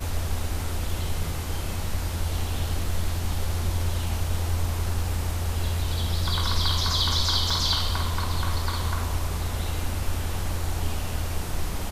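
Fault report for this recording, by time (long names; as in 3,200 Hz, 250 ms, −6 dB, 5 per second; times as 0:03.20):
0:07.50: drop-out 3.5 ms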